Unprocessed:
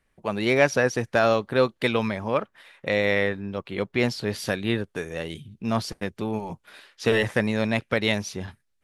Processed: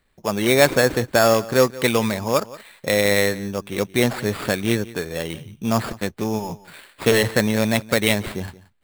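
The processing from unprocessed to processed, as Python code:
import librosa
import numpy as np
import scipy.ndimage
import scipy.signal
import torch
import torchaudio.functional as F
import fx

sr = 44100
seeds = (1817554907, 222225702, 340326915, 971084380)

p1 = fx.sample_hold(x, sr, seeds[0], rate_hz=6000.0, jitter_pct=0)
p2 = p1 + fx.echo_single(p1, sr, ms=176, db=-19.0, dry=0)
y = p2 * librosa.db_to_amplitude(4.5)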